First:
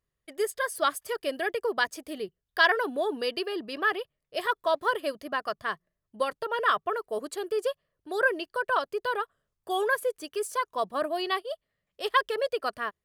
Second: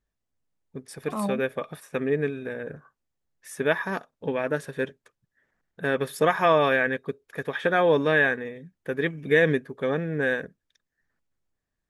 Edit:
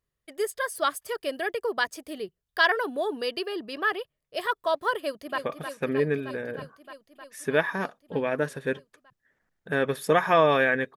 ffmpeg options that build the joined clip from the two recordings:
ffmpeg -i cue0.wav -i cue1.wav -filter_complex "[0:a]apad=whole_dur=10.96,atrim=end=10.96,atrim=end=5.382[link_01];[1:a]atrim=start=1.498:end=7.08[link_02];[link_01][link_02]acrossfade=duration=0.004:curve1=hsin:curve2=hsin,asplit=2[link_03][link_04];[link_04]afade=type=in:start_time=4.98:duration=0.01,afade=type=out:start_time=5.38:duration=0.01,aecho=0:1:310|620|930|1240|1550|1860|2170|2480|2790|3100|3410|3720:0.421697|0.337357|0.269886|0.215909|0.172727|0.138182|0.110545|0.0884362|0.0707489|0.0565991|0.0452793|0.0362235[link_05];[link_03][link_05]amix=inputs=2:normalize=0" out.wav

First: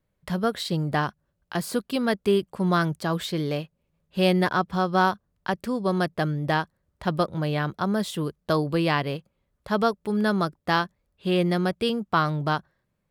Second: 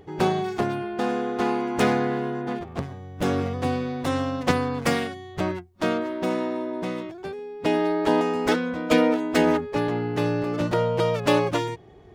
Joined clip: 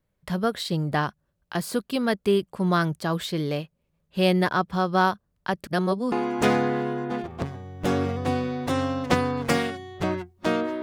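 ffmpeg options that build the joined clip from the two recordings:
ffmpeg -i cue0.wav -i cue1.wav -filter_complex "[0:a]apad=whole_dur=10.82,atrim=end=10.82,asplit=2[link_01][link_02];[link_01]atrim=end=5.672[link_03];[link_02]atrim=start=5.668:end=6.122,asetpts=PTS-STARTPTS,areverse[link_04];[1:a]atrim=start=1.488:end=6.19[link_05];[link_03][link_04]acrossfade=duration=0.004:curve1=hsin:curve2=hsin[link_06];[link_06][link_05]acrossfade=duration=0.004:curve1=hsin:curve2=hsin" out.wav

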